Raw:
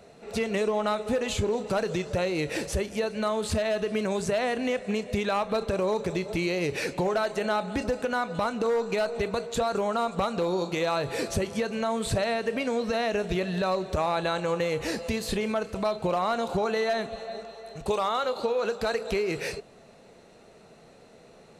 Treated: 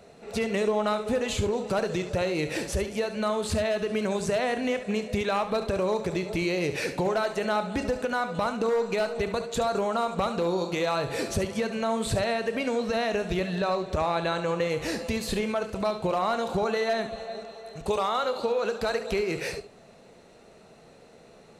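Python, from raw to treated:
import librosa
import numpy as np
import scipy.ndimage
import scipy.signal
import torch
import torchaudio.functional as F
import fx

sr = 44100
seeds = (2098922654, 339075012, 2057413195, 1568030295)

y = fx.high_shelf(x, sr, hz=11000.0, db=-9.5, at=(13.55, 14.7))
y = y + 10.0 ** (-11.0 / 20.0) * np.pad(y, (int(71 * sr / 1000.0), 0))[:len(y)]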